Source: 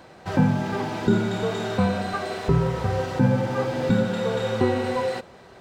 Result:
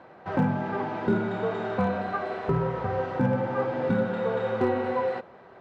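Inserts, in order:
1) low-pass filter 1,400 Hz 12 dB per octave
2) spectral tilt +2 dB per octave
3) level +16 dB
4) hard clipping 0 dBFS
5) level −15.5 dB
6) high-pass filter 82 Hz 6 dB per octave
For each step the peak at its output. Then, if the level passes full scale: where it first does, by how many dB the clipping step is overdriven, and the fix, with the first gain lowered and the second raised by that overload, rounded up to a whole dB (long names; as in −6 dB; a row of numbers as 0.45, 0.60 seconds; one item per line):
−7.5, −11.0, +5.0, 0.0, −15.5, −13.5 dBFS
step 3, 5.0 dB
step 3 +11 dB, step 5 −10.5 dB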